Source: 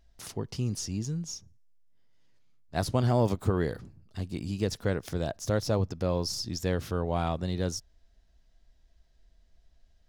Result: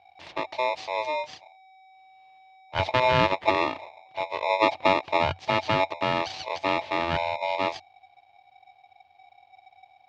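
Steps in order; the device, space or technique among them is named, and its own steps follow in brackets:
0:04.42–0:05.34: tilt shelving filter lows +5.5 dB, about 750 Hz
0:07.17–0:07.59: gain on a spectral selection 270–2,800 Hz −17 dB
ring modulator pedal into a guitar cabinet (ring modulator with a square carrier 760 Hz; loudspeaker in its box 89–3,700 Hz, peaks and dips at 90 Hz +9 dB, 220 Hz −10 dB, 430 Hz −4 dB, 1,400 Hz −9 dB)
level +5 dB

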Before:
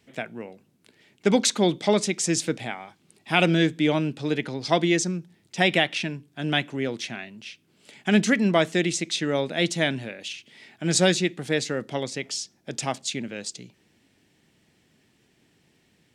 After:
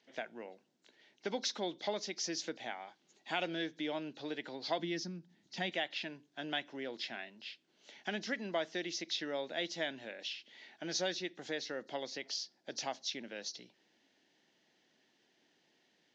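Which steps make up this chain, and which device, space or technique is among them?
0:04.79–0:05.70: low shelf with overshoot 320 Hz +8 dB, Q 1.5
hearing aid with frequency lowering (hearing-aid frequency compression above 3,800 Hz 1.5 to 1; downward compressor 2 to 1, threshold −31 dBFS, peak gain reduction 10.5 dB; loudspeaker in its box 390–6,400 Hz, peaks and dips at 430 Hz −4 dB, 1,200 Hz −6 dB, 2,400 Hz −6 dB)
level −4 dB

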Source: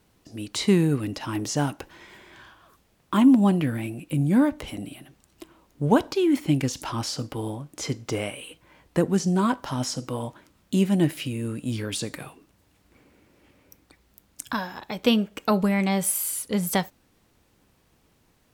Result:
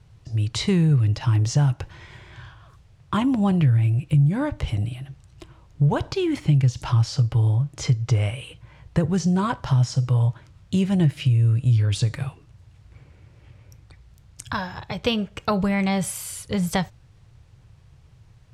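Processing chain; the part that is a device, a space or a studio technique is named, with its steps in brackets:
jukebox (low-pass filter 7,200 Hz 12 dB per octave; low shelf with overshoot 170 Hz +11.5 dB, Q 3; downward compressor 3 to 1, threshold −19 dBFS, peak gain reduction 8.5 dB)
level +2 dB

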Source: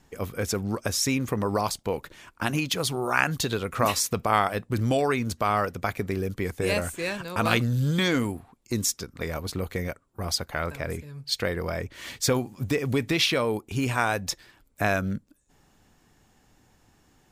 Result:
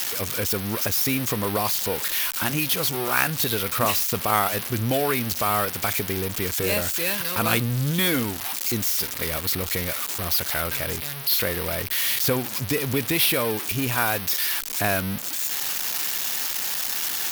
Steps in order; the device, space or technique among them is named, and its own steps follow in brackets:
budget class-D amplifier (gap after every zero crossing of 0.073 ms; spike at every zero crossing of −11 dBFS)

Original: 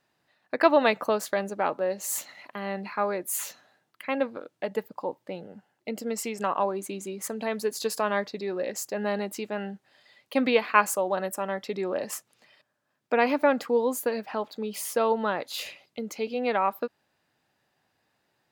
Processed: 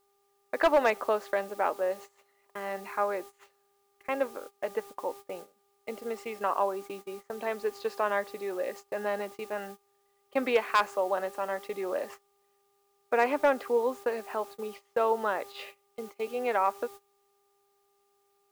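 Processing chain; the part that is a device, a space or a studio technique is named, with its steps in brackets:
aircraft radio (band-pass filter 370–2,500 Hz; hard clipping −14.5 dBFS, distortion −16 dB; hum with harmonics 400 Hz, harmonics 3, −49 dBFS −4 dB per octave; white noise bed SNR 23 dB; noise gate −41 dBFS, range −22 dB)
level −1 dB

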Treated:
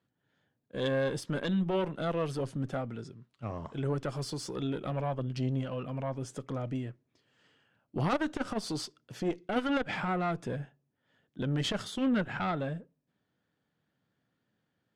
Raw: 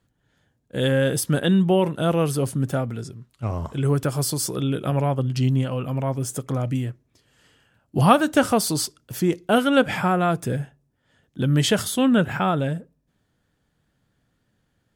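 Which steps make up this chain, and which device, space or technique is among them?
valve radio (band-pass filter 140–4,700 Hz; tube saturation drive 15 dB, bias 0.6; saturating transformer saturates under 220 Hz)
level −4.5 dB

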